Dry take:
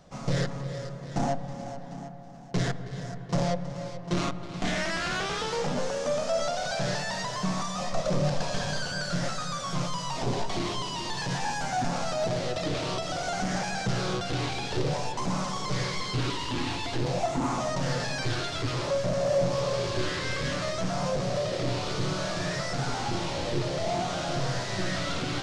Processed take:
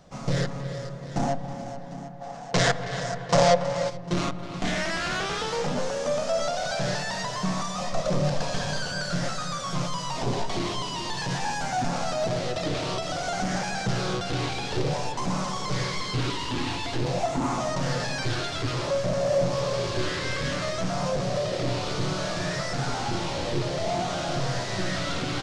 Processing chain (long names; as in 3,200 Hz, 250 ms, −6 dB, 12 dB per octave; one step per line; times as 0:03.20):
far-end echo of a speakerphone 280 ms, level −14 dB
gain on a spectral selection 0:02.21–0:03.90, 450–9,400 Hz +10 dB
level +1.5 dB